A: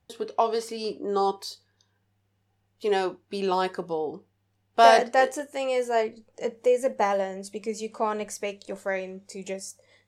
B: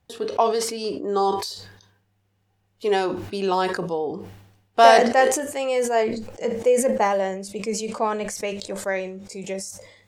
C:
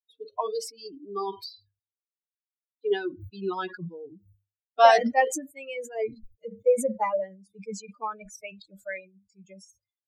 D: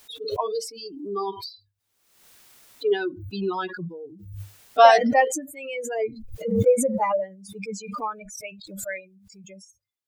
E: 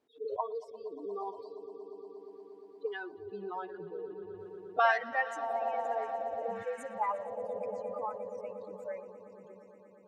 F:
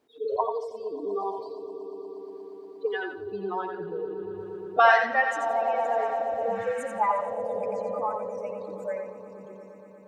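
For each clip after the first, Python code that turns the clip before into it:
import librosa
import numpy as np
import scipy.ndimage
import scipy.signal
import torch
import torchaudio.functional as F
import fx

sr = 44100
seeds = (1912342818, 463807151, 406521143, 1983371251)

y1 = fx.sustainer(x, sr, db_per_s=65.0)
y1 = y1 * 10.0 ** (3.0 / 20.0)
y2 = fx.bin_expand(y1, sr, power=3.0)
y2 = fx.high_shelf(y2, sr, hz=5200.0, db=-5.5)
y3 = fx.pre_swell(y2, sr, db_per_s=56.0)
y3 = y3 * 10.0 ** (2.5 / 20.0)
y4 = fx.echo_swell(y3, sr, ms=118, loudest=5, wet_db=-17.0)
y4 = fx.auto_wah(y4, sr, base_hz=330.0, top_hz=1500.0, q=2.1, full_db=-17.0, direction='up')
y4 = y4 * 10.0 ** (-4.5 / 20.0)
y5 = fx.echo_feedback(y4, sr, ms=87, feedback_pct=23, wet_db=-6)
y5 = y5 * 10.0 ** (7.5 / 20.0)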